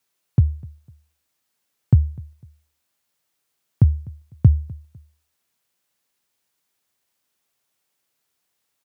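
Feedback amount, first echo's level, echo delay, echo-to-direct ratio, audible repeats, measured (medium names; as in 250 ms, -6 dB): 32%, -23.0 dB, 251 ms, -22.5 dB, 2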